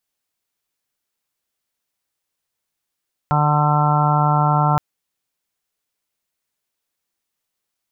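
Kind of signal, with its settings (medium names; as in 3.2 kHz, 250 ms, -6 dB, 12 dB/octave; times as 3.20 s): steady additive tone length 1.47 s, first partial 149 Hz, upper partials -14/-19/-12/-4.5/-4.5/-7/-15/-6 dB, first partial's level -16.5 dB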